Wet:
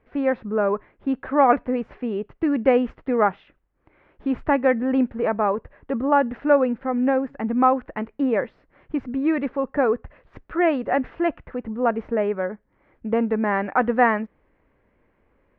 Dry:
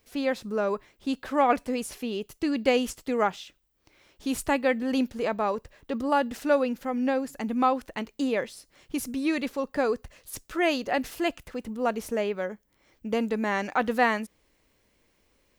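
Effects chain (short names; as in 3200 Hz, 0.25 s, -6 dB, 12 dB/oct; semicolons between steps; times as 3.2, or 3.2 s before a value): LPF 1900 Hz 24 dB/oct; gain +5.5 dB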